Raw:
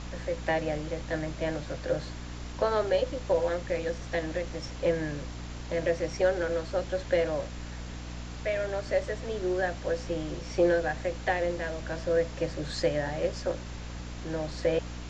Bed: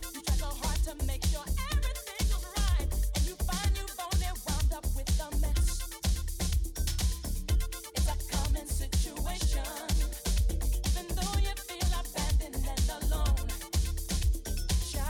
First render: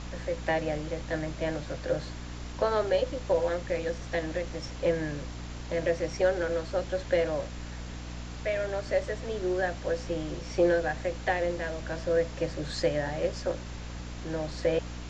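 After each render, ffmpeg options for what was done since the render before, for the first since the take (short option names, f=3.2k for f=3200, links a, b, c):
-af anull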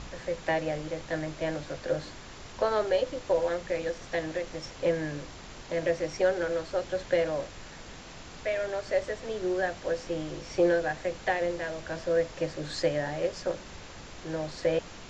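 -af "bandreject=f=60:t=h:w=4,bandreject=f=120:t=h:w=4,bandreject=f=180:t=h:w=4,bandreject=f=240:t=h:w=4,bandreject=f=300:t=h:w=4"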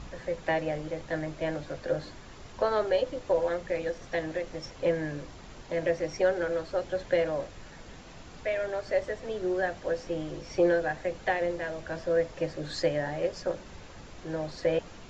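-af "afftdn=nr=6:nf=-46"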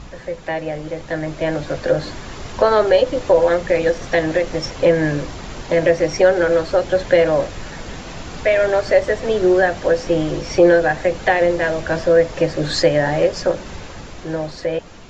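-filter_complex "[0:a]asplit=2[a][b];[b]alimiter=limit=-23.5dB:level=0:latency=1:release=186,volume=1dB[c];[a][c]amix=inputs=2:normalize=0,dynaudnorm=f=330:g=9:m=11.5dB"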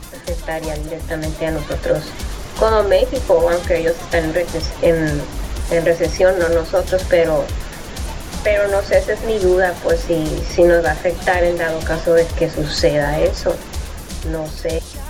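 -filter_complex "[1:a]volume=2.5dB[a];[0:a][a]amix=inputs=2:normalize=0"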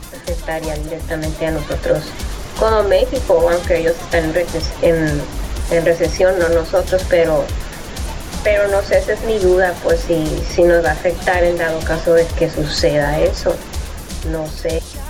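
-af "volume=1.5dB,alimiter=limit=-3dB:level=0:latency=1"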